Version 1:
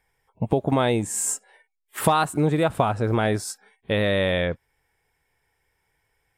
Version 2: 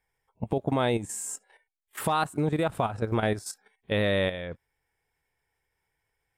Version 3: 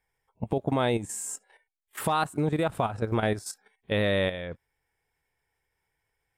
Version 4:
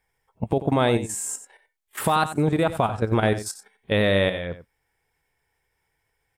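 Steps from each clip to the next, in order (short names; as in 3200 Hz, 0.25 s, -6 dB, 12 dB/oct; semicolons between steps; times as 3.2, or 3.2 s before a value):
level quantiser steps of 11 dB; gain -2.5 dB
nothing audible
echo 91 ms -13 dB; gain +5 dB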